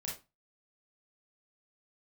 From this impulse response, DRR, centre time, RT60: -4.0 dB, 33 ms, 0.25 s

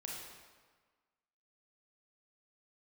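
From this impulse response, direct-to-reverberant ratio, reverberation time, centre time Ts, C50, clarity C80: -3.0 dB, 1.5 s, 81 ms, 0.0 dB, 2.5 dB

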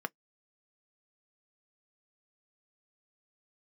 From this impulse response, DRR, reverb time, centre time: 9.5 dB, no single decay rate, 1 ms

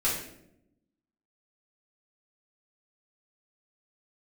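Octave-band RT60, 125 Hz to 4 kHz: 1.2 s, 1.2 s, 0.95 s, 0.60 s, 0.60 s, 0.50 s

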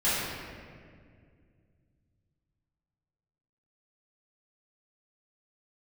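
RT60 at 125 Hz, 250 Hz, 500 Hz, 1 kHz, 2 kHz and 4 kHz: 3.8 s, 3.0 s, 2.4 s, 1.7 s, 1.8 s, 1.2 s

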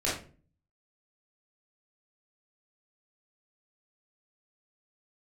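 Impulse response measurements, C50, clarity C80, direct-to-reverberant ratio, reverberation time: 3.5 dB, 9.5 dB, -8.0 dB, 0.40 s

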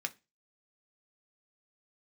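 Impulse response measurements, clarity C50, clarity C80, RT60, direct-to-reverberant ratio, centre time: 22.0 dB, 29.5 dB, 0.25 s, 6.0 dB, 3 ms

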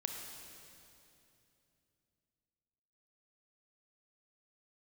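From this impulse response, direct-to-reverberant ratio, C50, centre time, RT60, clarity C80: 2.5 dB, 3.0 dB, 82 ms, 2.8 s, 4.0 dB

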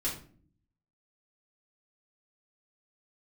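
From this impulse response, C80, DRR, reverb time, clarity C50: 12.0 dB, -8.0 dB, 0.50 s, 7.0 dB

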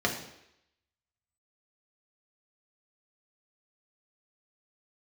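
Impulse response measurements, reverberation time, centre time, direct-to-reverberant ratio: 0.80 s, 23 ms, -0.5 dB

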